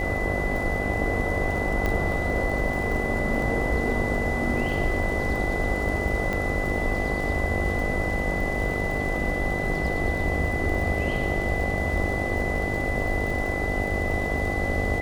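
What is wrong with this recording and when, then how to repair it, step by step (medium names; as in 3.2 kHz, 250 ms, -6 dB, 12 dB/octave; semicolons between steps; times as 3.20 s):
buzz 50 Hz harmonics 16 -31 dBFS
crackle 55 per s -32 dBFS
whine 2 kHz -29 dBFS
1.86 s: pop -14 dBFS
6.33 s: pop -15 dBFS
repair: de-click; de-hum 50 Hz, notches 16; band-stop 2 kHz, Q 30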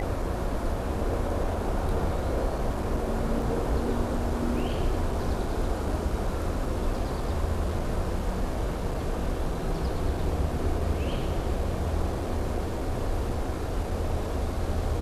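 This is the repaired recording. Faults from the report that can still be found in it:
6.33 s: pop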